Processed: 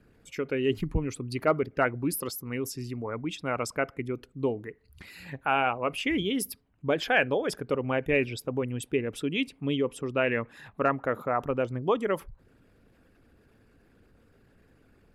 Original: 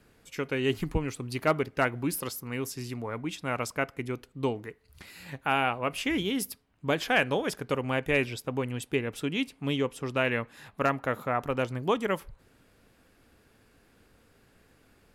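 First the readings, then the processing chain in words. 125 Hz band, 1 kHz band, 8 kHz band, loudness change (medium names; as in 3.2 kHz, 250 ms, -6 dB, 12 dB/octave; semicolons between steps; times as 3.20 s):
-0.5 dB, +0.5 dB, 0.0 dB, +1.0 dB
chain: resonances exaggerated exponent 1.5; trim +1 dB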